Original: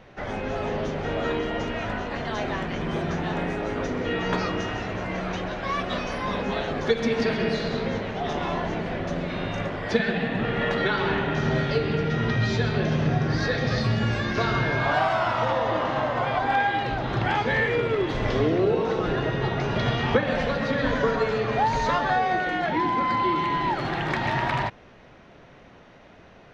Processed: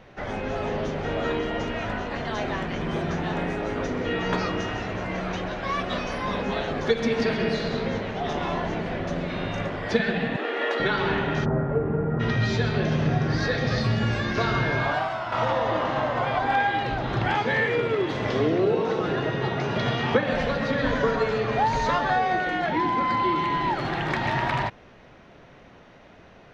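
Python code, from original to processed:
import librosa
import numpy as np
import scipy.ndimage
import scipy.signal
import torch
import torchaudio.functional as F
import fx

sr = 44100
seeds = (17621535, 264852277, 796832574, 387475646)

y = fx.steep_highpass(x, sr, hz=280.0, slope=48, at=(10.36, 10.8))
y = fx.lowpass(y, sr, hz=1300.0, slope=24, at=(11.44, 12.19), fade=0.02)
y = fx.highpass(y, sr, hz=110.0, slope=12, at=(17.35, 20.29))
y = fx.edit(y, sr, fx.fade_out_to(start_s=14.8, length_s=0.52, curve='qua', floor_db=-7.5), tone=tone)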